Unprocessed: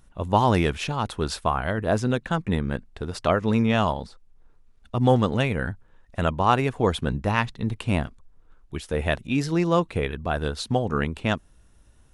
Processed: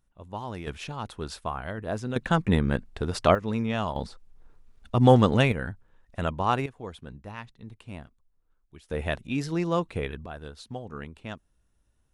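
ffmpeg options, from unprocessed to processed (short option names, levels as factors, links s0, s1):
-af "asetnsamples=n=441:p=0,asendcmd='0.67 volume volume -8.5dB;2.16 volume volume 2dB;3.35 volume volume -7dB;3.96 volume volume 2dB;5.52 volume volume -5dB;6.66 volume volume -17dB;8.9 volume volume -5dB;10.26 volume volume -14dB',volume=0.15"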